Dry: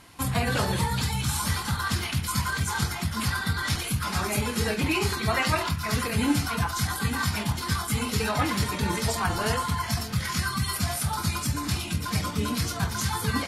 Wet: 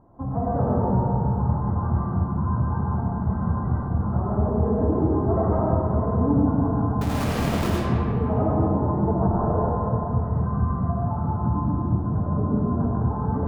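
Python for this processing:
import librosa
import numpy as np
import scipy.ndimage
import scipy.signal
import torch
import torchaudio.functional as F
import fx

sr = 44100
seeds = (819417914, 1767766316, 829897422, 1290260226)

y = scipy.signal.sosfilt(scipy.signal.cheby2(4, 50, 2300.0, 'lowpass', fs=sr, output='sos'), x)
y = fx.schmitt(y, sr, flips_db=-41.5, at=(7.01, 7.7))
y = fx.rev_freeverb(y, sr, rt60_s=2.8, hf_ratio=0.45, predelay_ms=45, drr_db=-5.0)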